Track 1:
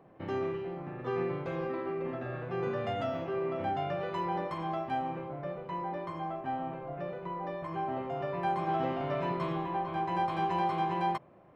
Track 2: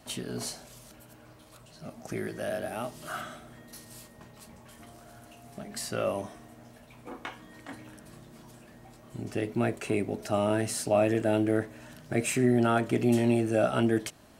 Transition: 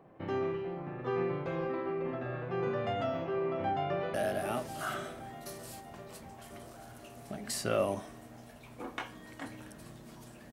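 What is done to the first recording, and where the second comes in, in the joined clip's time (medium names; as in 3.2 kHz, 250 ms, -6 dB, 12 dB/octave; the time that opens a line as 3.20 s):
track 1
3.38–4.14 s: echo throw 520 ms, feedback 70%, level -9 dB
4.14 s: go over to track 2 from 2.41 s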